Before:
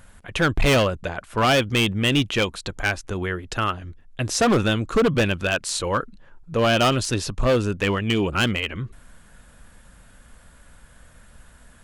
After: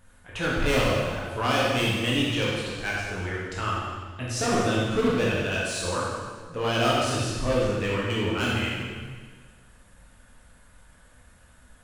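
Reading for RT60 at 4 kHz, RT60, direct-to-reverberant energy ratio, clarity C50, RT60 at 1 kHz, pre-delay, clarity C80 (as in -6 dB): 1.5 s, 1.6 s, -6.5 dB, -1.5 dB, 1.6 s, 7 ms, 0.5 dB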